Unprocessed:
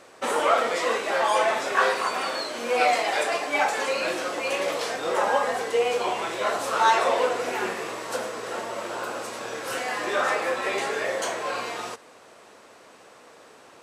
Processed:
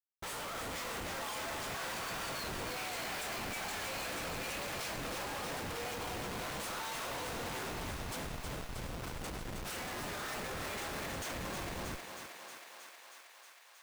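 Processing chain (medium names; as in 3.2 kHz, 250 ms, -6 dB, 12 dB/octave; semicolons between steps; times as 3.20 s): differentiator; Schmitt trigger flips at -37.5 dBFS; thinning echo 316 ms, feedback 79%, high-pass 420 Hz, level -5.5 dB; trim -1.5 dB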